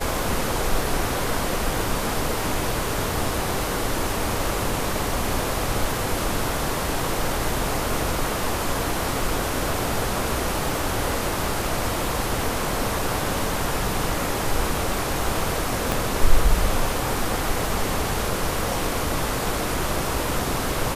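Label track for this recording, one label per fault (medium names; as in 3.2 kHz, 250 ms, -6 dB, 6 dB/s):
15.920000	15.920000	pop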